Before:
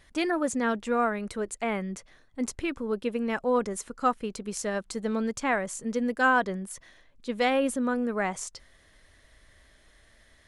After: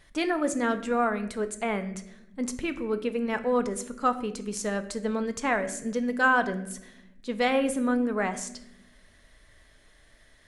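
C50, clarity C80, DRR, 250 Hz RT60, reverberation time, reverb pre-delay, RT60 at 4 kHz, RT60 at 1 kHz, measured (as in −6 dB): 13.0 dB, 15.5 dB, 8.5 dB, 1.5 s, 0.85 s, 5 ms, 0.55 s, 0.65 s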